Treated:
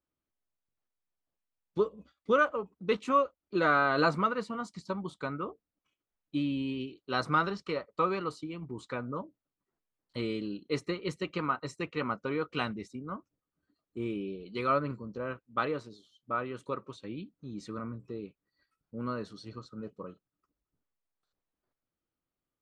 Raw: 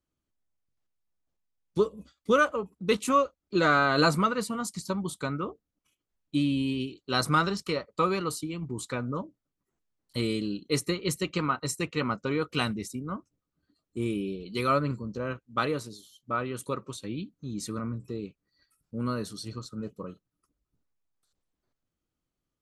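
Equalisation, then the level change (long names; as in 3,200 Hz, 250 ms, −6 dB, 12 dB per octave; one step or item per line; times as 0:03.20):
high-frequency loss of the air 110 metres
low-shelf EQ 280 Hz −9 dB
high-shelf EQ 3,200 Hz −9 dB
0.0 dB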